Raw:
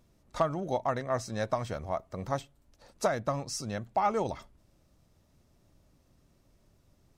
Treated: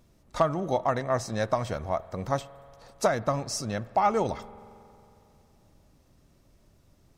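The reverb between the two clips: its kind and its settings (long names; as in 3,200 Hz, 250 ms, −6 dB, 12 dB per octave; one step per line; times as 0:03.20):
spring reverb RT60 2.8 s, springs 45 ms, chirp 55 ms, DRR 18 dB
level +4 dB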